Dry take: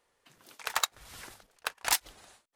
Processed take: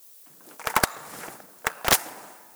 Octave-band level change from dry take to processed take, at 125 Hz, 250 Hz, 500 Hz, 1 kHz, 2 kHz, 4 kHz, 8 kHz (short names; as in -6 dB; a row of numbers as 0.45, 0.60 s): +18.5, +19.5, +14.5, +9.0, +8.0, +4.5, +5.0 dB